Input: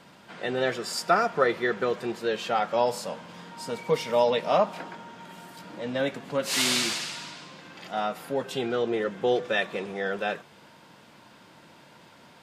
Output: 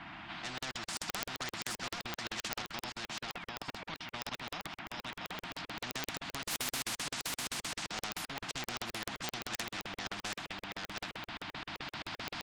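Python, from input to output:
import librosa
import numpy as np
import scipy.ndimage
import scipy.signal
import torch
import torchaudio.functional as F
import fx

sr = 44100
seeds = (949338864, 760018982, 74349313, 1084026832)

y = fx.recorder_agc(x, sr, target_db=-12.5, rise_db_per_s=5.8, max_gain_db=30)
y = scipy.signal.sosfilt(scipy.signal.ellip(3, 1.0, 40, [320.0, 700.0], 'bandstop', fs=sr, output='sos'), y)
y = fx.spec_paint(y, sr, seeds[0], shape='fall', start_s=3.21, length_s=0.66, low_hz=550.0, high_hz=4300.0, level_db=-40.0)
y = fx.level_steps(y, sr, step_db=16, at=(2.62, 4.94))
y = fx.env_lowpass(y, sr, base_hz=2400.0, full_db=-24.0)
y = fx.high_shelf(y, sr, hz=3300.0, db=-9.0)
y = 10.0 ** (-24.5 / 20.0) * np.tanh(y / 10.0 ** (-24.5 / 20.0))
y = fx.high_shelf(y, sr, hz=7200.0, db=-9.0)
y = y + 10.0 ** (-6.5 / 20.0) * np.pad(y, (int(730 * sr / 1000.0), 0))[:len(y)]
y = fx.buffer_crackle(y, sr, first_s=0.58, period_s=0.13, block=2048, kind='zero')
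y = fx.spectral_comp(y, sr, ratio=4.0)
y = y * librosa.db_to_amplitude(5.5)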